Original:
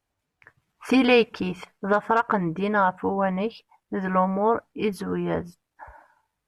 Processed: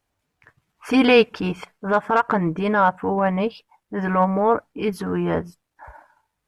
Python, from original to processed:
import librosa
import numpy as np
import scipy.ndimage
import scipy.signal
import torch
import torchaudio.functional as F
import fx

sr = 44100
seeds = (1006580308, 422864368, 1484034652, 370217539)

y = fx.transient(x, sr, attack_db=-7, sustain_db=-3)
y = F.gain(torch.from_numpy(y), 5.0).numpy()